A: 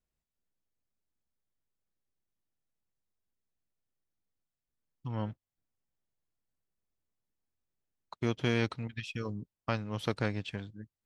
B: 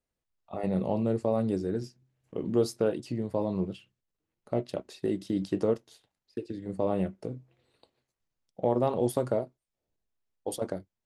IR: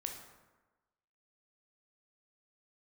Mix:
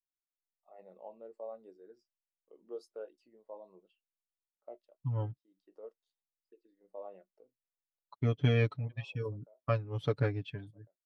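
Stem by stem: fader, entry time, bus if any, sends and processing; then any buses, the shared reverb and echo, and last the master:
-2.0 dB, 0.00 s, no send, comb 7 ms, depth 77%
-14.5 dB, 0.15 s, no send, Bessel high-pass 900 Hz, order 2; high shelf 2800 Hz -6 dB; AGC gain up to 8.5 dB; auto duck -13 dB, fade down 0.30 s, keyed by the first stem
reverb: off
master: spectral expander 1.5:1

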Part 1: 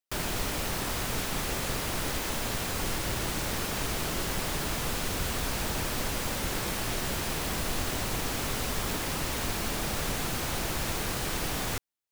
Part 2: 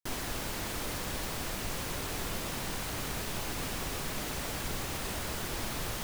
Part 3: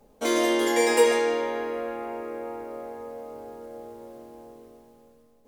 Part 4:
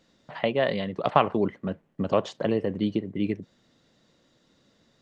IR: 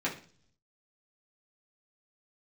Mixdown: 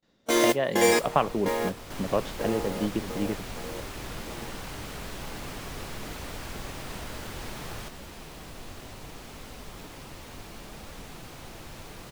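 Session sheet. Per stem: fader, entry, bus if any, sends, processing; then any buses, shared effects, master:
-6.5 dB, 0.90 s, no send, bell 1600 Hz -2.5 dB; flange 0.7 Hz, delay 3.4 ms, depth 5.8 ms, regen -62%
-2.5 dB, 1.85 s, no send, dry
+1.0 dB, 0.05 s, no send, high shelf 5800 Hz +10 dB; step gate ".x.x..x...xx" 64 bpm -24 dB; modulation noise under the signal 10 dB
-3.0 dB, 0.00 s, no send, gate with hold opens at -55 dBFS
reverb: off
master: high shelf 5700 Hz -7 dB

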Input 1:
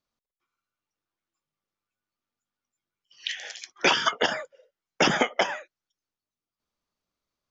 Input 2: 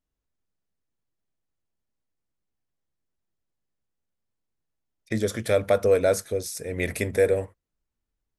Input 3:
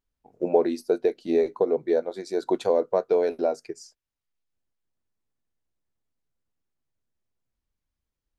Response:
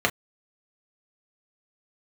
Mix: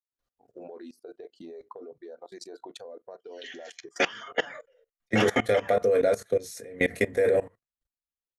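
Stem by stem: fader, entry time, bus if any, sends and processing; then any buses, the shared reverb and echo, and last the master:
-2.0 dB, 0.15 s, send -9 dB, flange 0.94 Hz, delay 6.2 ms, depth 6.2 ms, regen +21%; auto duck -19 dB, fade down 1.90 s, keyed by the second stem
-4.0 dB, 0.00 s, send -5.5 dB, gate with hold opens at -45 dBFS
+1.5 dB, 0.15 s, send -22 dB, reverb removal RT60 1.2 s; compressor 5:1, threshold -28 dBFS, peak gain reduction 12.5 dB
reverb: on, pre-delay 3 ms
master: low shelf 200 Hz -4.5 dB; level quantiser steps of 21 dB

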